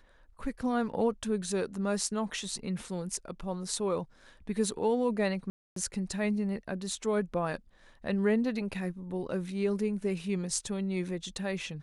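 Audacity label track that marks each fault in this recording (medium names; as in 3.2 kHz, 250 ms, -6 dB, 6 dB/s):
5.500000	5.760000	dropout 263 ms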